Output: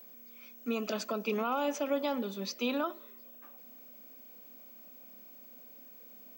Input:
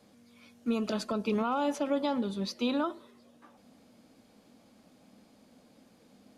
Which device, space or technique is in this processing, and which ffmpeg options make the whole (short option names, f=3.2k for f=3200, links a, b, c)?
old television with a line whistle: -af "highpass=f=210:w=0.5412,highpass=f=210:w=1.3066,equalizer=f=220:t=q:w=4:g=-3,equalizer=f=320:t=q:w=4:g=-6,equalizer=f=910:t=q:w=4:g=-4,equalizer=f=2.5k:t=q:w=4:g=4,equalizer=f=4k:t=q:w=4:g=-4,equalizer=f=6.1k:t=q:w=4:g=4,lowpass=f=8.1k:w=0.5412,lowpass=f=8.1k:w=1.3066,aeval=exprs='val(0)+0.00316*sin(2*PI*15734*n/s)':c=same"